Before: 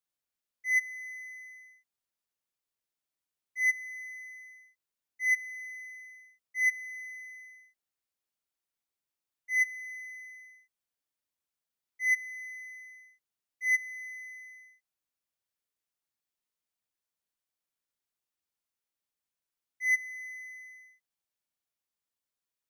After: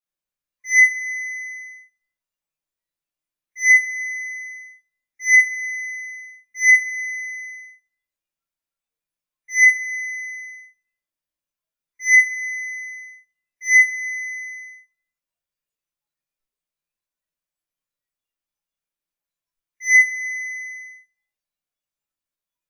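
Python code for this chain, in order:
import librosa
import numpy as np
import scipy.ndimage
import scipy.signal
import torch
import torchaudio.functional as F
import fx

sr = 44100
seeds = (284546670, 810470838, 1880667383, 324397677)

y = fx.room_shoebox(x, sr, seeds[0], volume_m3=63.0, walls='mixed', distance_m=2.4)
y = fx.noise_reduce_blind(y, sr, reduce_db=14)
y = y * librosa.db_to_amplitude(3.0)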